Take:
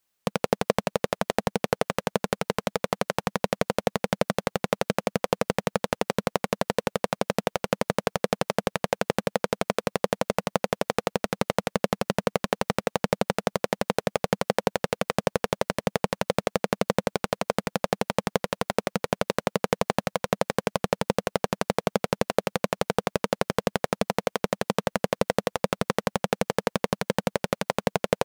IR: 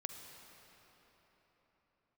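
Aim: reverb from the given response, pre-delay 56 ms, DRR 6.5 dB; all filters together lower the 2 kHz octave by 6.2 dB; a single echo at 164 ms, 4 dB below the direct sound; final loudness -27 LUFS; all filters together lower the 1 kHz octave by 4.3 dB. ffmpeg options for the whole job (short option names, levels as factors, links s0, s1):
-filter_complex "[0:a]equalizer=f=1000:t=o:g=-4.5,equalizer=f=2000:t=o:g=-6.5,aecho=1:1:164:0.631,asplit=2[s0][s1];[1:a]atrim=start_sample=2205,adelay=56[s2];[s1][s2]afir=irnorm=-1:irlink=0,volume=0.596[s3];[s0][s3]amix=inputs=2:normalize=0"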